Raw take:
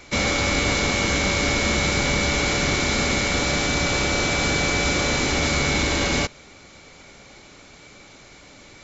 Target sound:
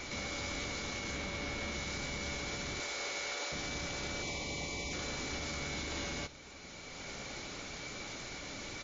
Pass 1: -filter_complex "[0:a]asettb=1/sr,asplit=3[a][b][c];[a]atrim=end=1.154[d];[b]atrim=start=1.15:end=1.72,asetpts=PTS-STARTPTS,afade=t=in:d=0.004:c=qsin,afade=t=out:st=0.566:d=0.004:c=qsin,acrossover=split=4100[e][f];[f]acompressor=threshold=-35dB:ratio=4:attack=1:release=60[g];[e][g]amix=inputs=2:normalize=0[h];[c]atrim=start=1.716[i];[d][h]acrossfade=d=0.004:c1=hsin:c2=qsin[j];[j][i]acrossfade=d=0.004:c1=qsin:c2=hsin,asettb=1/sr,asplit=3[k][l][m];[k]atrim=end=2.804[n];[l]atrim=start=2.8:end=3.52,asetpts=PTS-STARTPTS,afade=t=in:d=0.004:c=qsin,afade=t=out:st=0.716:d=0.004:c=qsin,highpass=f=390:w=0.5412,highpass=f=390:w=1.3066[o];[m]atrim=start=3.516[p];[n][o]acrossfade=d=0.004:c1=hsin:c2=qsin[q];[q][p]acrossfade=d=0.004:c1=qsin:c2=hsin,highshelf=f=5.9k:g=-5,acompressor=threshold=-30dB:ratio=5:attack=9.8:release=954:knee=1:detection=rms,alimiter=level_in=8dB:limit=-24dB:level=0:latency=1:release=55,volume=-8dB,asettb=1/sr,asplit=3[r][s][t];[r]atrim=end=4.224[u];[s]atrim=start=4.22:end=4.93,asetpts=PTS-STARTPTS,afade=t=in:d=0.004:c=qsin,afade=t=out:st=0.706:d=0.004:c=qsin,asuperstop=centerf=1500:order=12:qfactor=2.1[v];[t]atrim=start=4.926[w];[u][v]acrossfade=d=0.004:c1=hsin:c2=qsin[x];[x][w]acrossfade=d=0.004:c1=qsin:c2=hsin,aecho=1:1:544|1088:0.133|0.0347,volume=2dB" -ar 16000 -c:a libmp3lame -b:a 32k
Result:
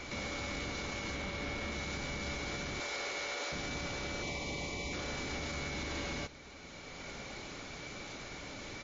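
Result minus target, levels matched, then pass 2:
8000 Hz band -3.5 dB
-filter_complex "[0:a]asettb=1/sr,asplit=3[a][b][c];[a]atrim=end=1.154[d];[b]atrim=start=1.15:end=1.72,asetpts=PTS-STARTPTS,afade=t=in:d=0.004:c=qsin,afade=t=out:st=0.566:d=0.004:c=qsin,acrossover=split=4100[e][f];[f]acompressor=threshold=-35dB:ratio=4:attack=1:release=60[g];[e][g]amix=inputs=2:normalize=0[h];[c]atrim=start=1.716[i];[d][h]acrossfade=d=0.004:c1=hsin:c2=qsin[j];[j][i]acrossfade=d=0.004:c1=qsin:c2=hsin,asettb=1/sr,asplit=3[k][l][m];[k]atrim=end=2.804[n];[l]atrim=start=2.8:end=3.52,asetpts=PTS-STARTPTS,afade=t=in:d=0.004:c=qsin,afade=t=out:st=0.716:d=0.004:c=qsin,highpass=f=390:w=0.5412,highpass=f=390:w=1.3066[o];[m]atrim=start=3.516[p];[n][o]acrossfade=d=0.004:c1=hsin:c2=qsin[q];[q][p]acrossfade=d=0.004:c1=qsin:c2=hsin,highshelf=f=5.9k:g=4.5,acompressor=threshold=-30dB:ratio=5:attack=9.8:release=954:knee=1:detection=rms,alimiter=level_in=8dB:limit=-24dB:level=0:latency=1:release=55,volume=-8dB,asettb=1/sr,asplit=3[r][s][t];[r]atrim=end=4.224[u];[s]atrim=start=4.22:end=4.93,asetpts=PTS-STARTPTS,afade=t=in:d=0.004:c=qsin,afade=t=out:st=0.706:d=0.004:c=qsin,asuperstop=centerf=1500:order=12:qfactor=2.1[v];[t]atrim=start=4.926[w];[u][v]acrossfade=d=0.004:c1=hsin:c2=qsin[x];[x][w]acrossfade=d=0.004:c1=qsin:c2=hsin,aecho=1:1:544|1088:0.133|0.0347,volume=2dB" -ar 16000 -c:a libmp3lame -b:a 32k

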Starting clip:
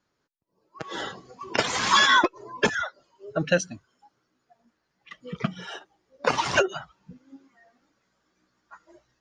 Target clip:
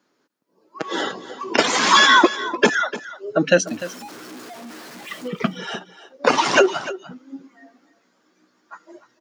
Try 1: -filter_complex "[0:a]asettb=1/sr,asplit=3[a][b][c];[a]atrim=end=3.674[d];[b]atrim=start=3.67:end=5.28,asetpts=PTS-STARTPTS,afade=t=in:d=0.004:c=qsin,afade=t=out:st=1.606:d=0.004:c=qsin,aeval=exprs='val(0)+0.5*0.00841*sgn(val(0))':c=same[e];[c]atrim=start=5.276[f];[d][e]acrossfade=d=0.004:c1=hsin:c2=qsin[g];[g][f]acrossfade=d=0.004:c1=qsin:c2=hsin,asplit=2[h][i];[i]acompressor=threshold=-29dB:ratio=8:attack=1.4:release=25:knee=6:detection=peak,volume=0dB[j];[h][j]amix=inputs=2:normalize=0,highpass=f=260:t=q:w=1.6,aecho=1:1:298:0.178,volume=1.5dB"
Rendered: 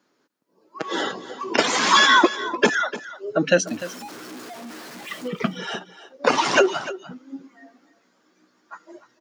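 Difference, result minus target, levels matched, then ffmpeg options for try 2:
compressor: peak gain reduction +8.5 dB
-filter_complex "[0:a]asettb=1/sr,asplit=3[a][b][c];[a]atrim=end=3.674[d];[b]atrim=start=3.67:end=5.28,asetpts=PTS-STARTPTS,afade=t=in:d=0.004:c=qsin,afade=t=out:st=1.606:d=0.004:c=qsin,aeval=exprs='val(0)+0.5*0.00841*sgn(val(0))':c=same[e];[c]atrim=start=5.276[f];[d][e]acrossfade=d=0.004:c1=hsin:c2=qsin[g];[g][f]acrossfade=d=0.004:c1=qsin:c2=hsin,asplit=2[h][i];[i]acompressor=threshold=-19.5dB:ratio=8:attack=1.4:release=25:knee=6:detection=peak,volume=0dB[j];[h][j]amix=inputs=2:normalize=0,highpass=f=260:t=q:w=1.6,aecho=1:1:298:0.178,volume=1.5dB"

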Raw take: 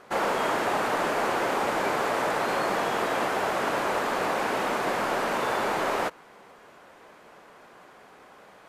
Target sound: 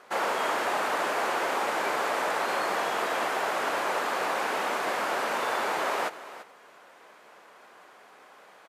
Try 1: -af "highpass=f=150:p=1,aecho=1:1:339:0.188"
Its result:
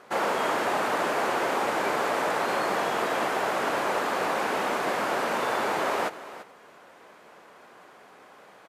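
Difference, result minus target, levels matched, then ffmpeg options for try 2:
125 Hz band +7.0 dB
-af "highpass=f=560:p=1,aecho=1:1:339:0.188"

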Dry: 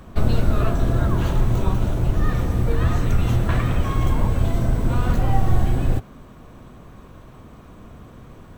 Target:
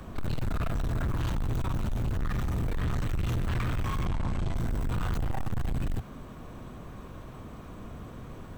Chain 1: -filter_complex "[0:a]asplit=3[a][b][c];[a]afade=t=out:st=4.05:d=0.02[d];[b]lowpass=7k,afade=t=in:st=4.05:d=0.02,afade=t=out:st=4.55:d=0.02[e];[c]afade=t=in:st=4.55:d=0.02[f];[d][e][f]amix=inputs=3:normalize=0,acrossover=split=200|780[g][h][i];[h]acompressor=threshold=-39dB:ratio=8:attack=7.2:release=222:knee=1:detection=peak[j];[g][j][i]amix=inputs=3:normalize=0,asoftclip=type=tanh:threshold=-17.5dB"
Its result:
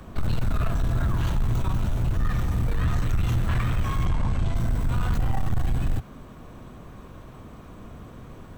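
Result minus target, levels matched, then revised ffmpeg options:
soft clip: distortion -5 dB
-filter_complex "[0:a]asplit=3[a][b][c];[a]afade=t=out:st=4.05:d=0.02[d];[b]lowpass=7k,afade=t=in:st=4.05:d=0.02,afade=t=out:st=4.55:d=0.02[e];[c]afade=t=in:st=4.55:d=0.02[f];[d][e][f]amix=inputs=3:normalize=0,acrossover=split=200|780[g][h][i];[h]acompressor=threshold=-39dB:ratio=8:attack=7.2:release=222:knee=1:detection=peak[j];[g][j][i]amix=inputs=3:normalize=0,asoftclip=type=tanh:threshold=-26dB"

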